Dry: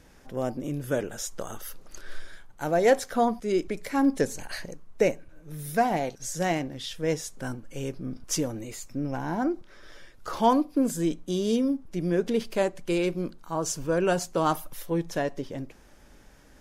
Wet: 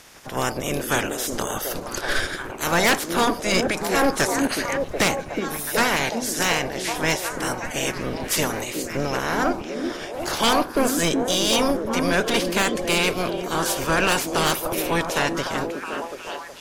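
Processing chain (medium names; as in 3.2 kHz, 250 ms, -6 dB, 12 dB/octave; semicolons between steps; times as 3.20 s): spectral peaks clipped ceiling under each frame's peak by 25 dB; repeats whose band climbs or falls 368 ms, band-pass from 290 Hz, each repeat 0.7 oct, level -2 dB; sine folder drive 9 dB, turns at -7 dBFS; trim -6.5 dB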